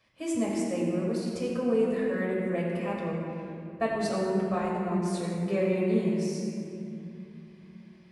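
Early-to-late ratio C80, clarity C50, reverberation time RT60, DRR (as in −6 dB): 0.0 dB, −1.0 dB, 2.6 s, −5.5 dB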